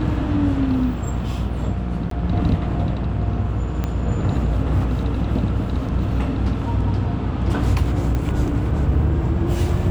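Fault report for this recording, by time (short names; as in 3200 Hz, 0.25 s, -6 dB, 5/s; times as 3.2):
buzz 60 Hz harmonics 28 -25 dBFS
2.1–2.11 gap 13 ms
3.84 pop -11 dBFS
8.15 pop -13 dBFS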